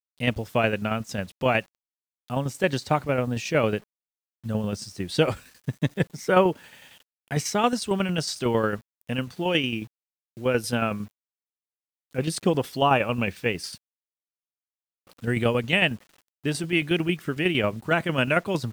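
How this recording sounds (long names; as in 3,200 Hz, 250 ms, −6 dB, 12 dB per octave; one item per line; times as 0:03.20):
tremolo saw down 11 Hz, depth 55%
a quantiser's noise floor 10 bits, dither none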